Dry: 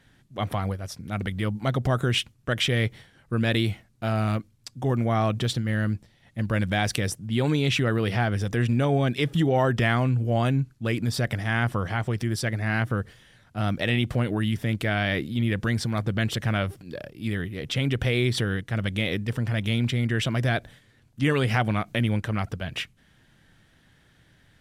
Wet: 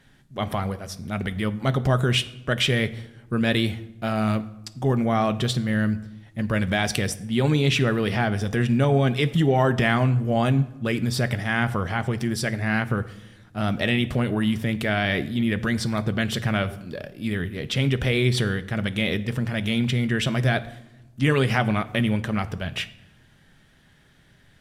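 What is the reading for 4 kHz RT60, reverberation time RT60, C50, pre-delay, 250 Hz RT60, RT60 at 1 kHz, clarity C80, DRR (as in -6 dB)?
0.65 s, 1.0 s, 16.5 dB, 5 ms, 1.4 s, 0.95 s, 18.5 dB, 10.5 dB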